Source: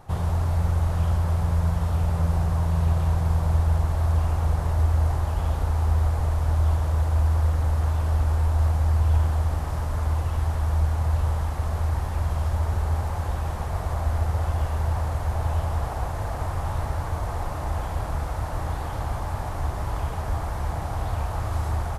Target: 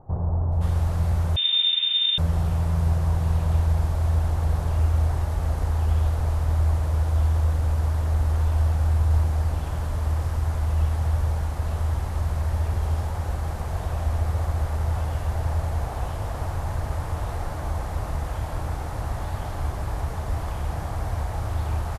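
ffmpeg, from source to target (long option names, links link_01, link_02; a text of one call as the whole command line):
ffmpeg -i in.wav -filter_complex "[0:a]acrossover=split=1000[link_01][link_02];[link_02]adelay=520[link_03];[link_01][link_03]amix=inputs=2:normalize=0,asettb=1/sr,asplit=3[link_04][link_05][link_06];[link_04]atrim=end=1.364[link_07];[link_05]atrim=start=1.36:end=2.18,asetpts=PTS-STARTPTS,afade=type=in:duration=0.004:curve=qsin,afade=type=out:start_time=0.816:duration=0.004:curve=qsin,lowpass=frequency=3100:width_type=q:width=0.5098,lowpass=frequency=3100:width_type=q:width=0.6013,lowpass=frequency=3100:width_type=q:width=0.9,lowpass=frequency=3100:width_type=q:width=2.563,afreqshift=-3700[link_08];[link_06]atrim=start=2.176[link_09];[link_07][link_08]acrossfade=duration=0.004:curve1=hsin:curve2=qsin[link_10];[link_10][link_09]acrossfade=duration=0.004:curve1=qsin:curve2=hsin" out.wav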